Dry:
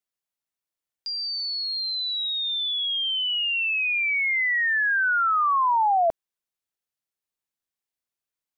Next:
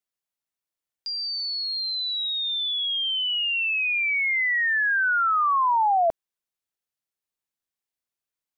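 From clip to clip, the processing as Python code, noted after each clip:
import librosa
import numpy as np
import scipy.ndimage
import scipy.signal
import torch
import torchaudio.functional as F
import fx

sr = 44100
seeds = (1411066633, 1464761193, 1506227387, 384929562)

y = x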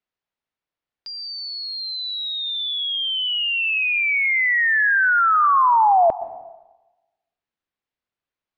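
y = fx.air_absorb(x, sr, metres=230.0)
y = fx.rev_plate(y, sr, seeds[0], rt60_s=1.1, hf_ratio=0.9, predelay_ms=105, drr_db=13.5)
y = y * librosa.db_to_amplitude(6.5)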